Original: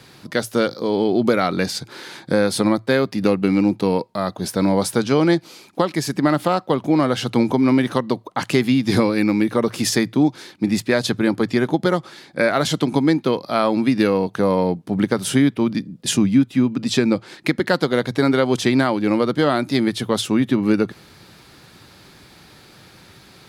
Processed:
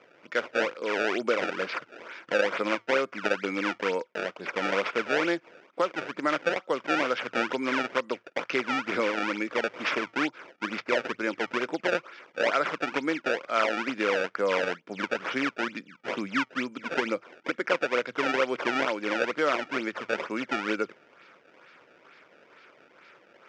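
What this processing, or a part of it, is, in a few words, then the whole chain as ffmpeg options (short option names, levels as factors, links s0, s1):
circuit-bent sampling toy: -af "acrusher=samples=24:mix=1:aa=0.000001:lfo=1:lforange=38.4:lforate=2.2,highpass=440,equalizer=f=520:t=q:w=4:g=4,equalizer=f=790:t=q:w=4:g=-6,equalizer=f=1400:t=q:w=4:g=7,equalizer=f=2300:t=q:w=4:g=7,equalizer=f=4100:t=q:w=4:g=-8,lowpass=f=5000:w=0.5412,lowpass=f=5000:w=1.3066,volume=0.447"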